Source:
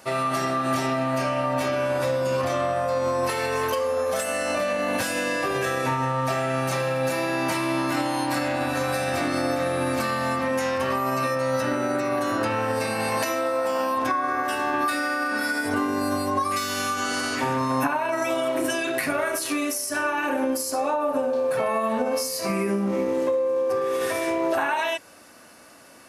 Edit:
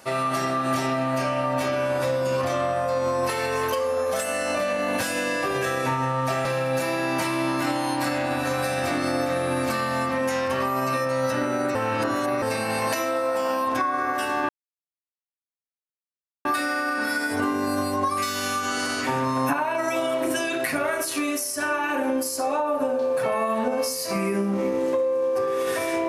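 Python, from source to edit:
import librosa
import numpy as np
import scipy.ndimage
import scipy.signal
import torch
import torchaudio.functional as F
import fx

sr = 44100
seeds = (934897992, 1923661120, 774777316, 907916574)

y = fx.edit(x, sr, fx.cut(start_s=6.45, length_s=0.3),
    fx.reverse_span(start_s=12.05, length_s=0.67),
    fx.insert_silence(at_s=14.79, length_s=1.96), tone=tone)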